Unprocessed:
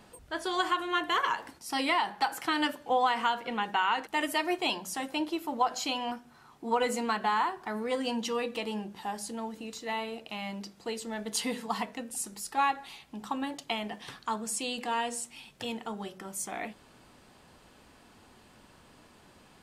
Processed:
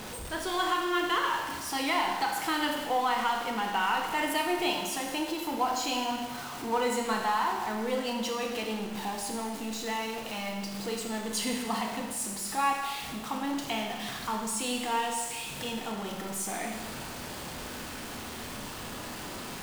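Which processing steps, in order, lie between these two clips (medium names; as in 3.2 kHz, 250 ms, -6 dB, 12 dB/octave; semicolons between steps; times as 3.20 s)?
jump at every zero crossing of -33 dBFS; Schroeder reverb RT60 1.3 s, combs from 25 ms, DRR 2 dB; trim -3.5 dB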